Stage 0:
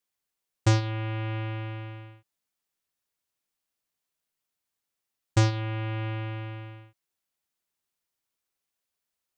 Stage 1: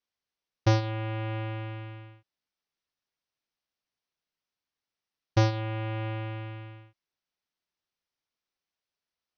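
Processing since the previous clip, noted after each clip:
Butterworth low-pass 6,100 Hz 96 dB per octave
dynamic equaliser 610 Hz, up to +6 dB, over −41 dBFS, Q 1.2
level −2 dB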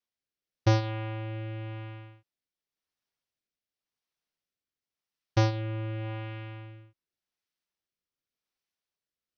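rotating-speaker cabinet horn 0.9 Hz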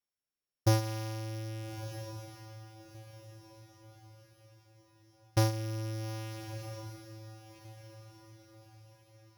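samples sorted by size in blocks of 8 samples
feedback delay with all-pass diffusion 1,311 ms, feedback 41%, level −12 dB
level −3 dB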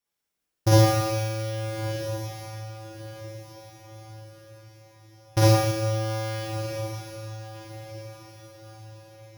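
four-comb reverb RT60 1.3 s, DRR −7 dB
level +3.5 dB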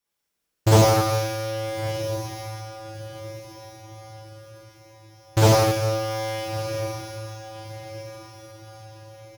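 single-tap delay 96 ms −5.5 dB
highs frequency-modulated by the lows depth 0.6 ms
level +2.5 dB

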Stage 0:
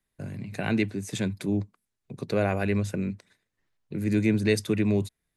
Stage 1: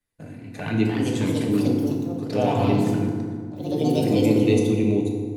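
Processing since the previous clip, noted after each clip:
flanger swept by the level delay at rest 10.5 ms, full sweep at −23 dBFS
delay with pitch and tempo change per echo 395 ms, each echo +3 semitones, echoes 3
feedback delay network reverb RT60 1.9 s, low-frequency decay 1.4×, high-frequency decay 0.55×, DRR −0.5 dB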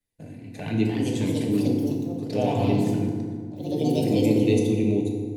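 parametric band 1,300 Hz −11 dB 0.72 octaves
level −1.5 dB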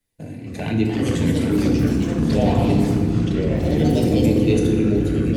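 in parallel at +2 dB: downward compressor, threshold −29 dBFS, peak gain reduction 13.5 dB
on the sum: delay with pitch and tempo change per echo 202 ms, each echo −5 semitones, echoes 3

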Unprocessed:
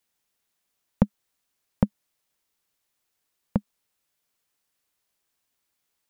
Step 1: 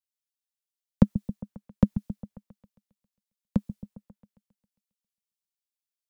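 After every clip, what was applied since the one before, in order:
on a send: echo whose low-pass opens from repeat to repeat 135 ms, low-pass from 200 Hz, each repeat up 1 octave, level −6 dB
on the sum: multiband upward and downward expander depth 100%
level −6 dB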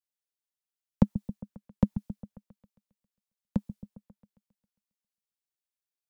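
dynamic equaliser 870 Hz, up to +6 dB, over −54 dBFS, Q 3.4
level −3.5 dB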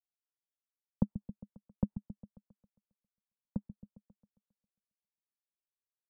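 Bessel low-pass filter 880 Hz, order 8
level −8 dB

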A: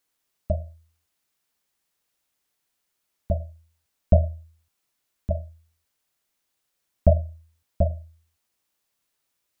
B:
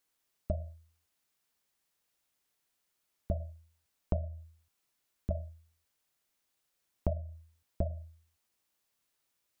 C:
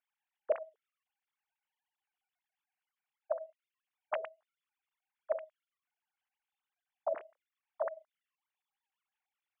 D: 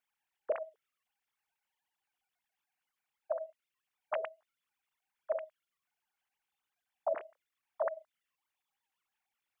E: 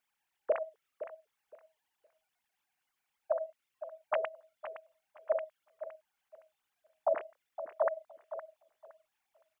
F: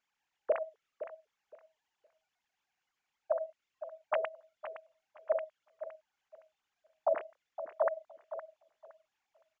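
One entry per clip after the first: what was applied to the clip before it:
downward compressor 8 to 1, threshold −25 dBFS, peak gain reduction 14 dB; level −3 dB
three sine waves on the formant tracks; level −2.5 dB
brickwall limiter −27 dBFS, peak gain reduction 7 dB; level +3.5 dB
repeating echo 515 ms, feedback 20%, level −12 dB; level +3.5 dB
downsampling to 16,000 Hz

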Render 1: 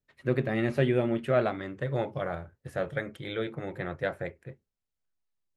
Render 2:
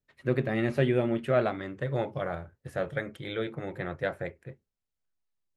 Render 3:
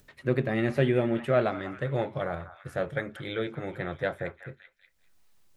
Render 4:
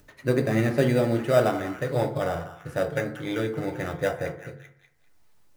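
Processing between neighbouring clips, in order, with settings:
no processing that can be heard
upward compression, threshold −45 dBFS; echo through a band-pass that steps 194 ms, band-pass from 1,100 Hz, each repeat 0.7 octaves, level −10 dB; level +1 dB
in parallel at −7 dB: sample-rate reduction 4,300 Hz, jitter 0%; on the sum: feedback delay network reverb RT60 0.62 s, low-frequency decay 1.1×, high-frequency decay 0.4×, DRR 4.5 dB

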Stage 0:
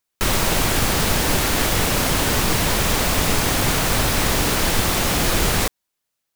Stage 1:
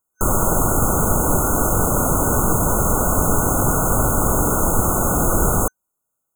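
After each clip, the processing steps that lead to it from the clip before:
brick-wall band-stop 1,500–6,300 Hz
level +2.5 dB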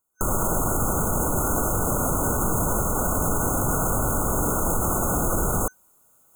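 brickwall limiter −14 dBFS, peak gain reduction 10 dB
reversed playback
upward compression, threshold −43 dBFS
reversed playback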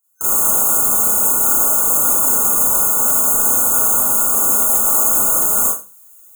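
spectral tilt +3.5 dB per octave
mains-hum notches 50/100/150/200 Hz
four-comb reverb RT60 0.31 s, combs from 27 ms, DRR −8 dB
level −6.5 dB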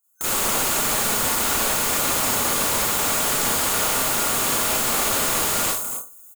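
on a send: multi-tap delay 63/275 ms −8.5/−10.5 dB
on the sum: slew-rate limiting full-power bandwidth 1,100 Hz
level −2.5 dB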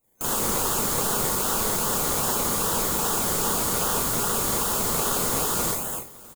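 phaser with its sweep stopped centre 430 Hz, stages 8
in parallel at −5.5 dB: sample-and-hold swept by an LFO 26×, swing 60% 2.5 Hz
on the sum: single-tap delay 654 ms −24 dB
level −3 dB

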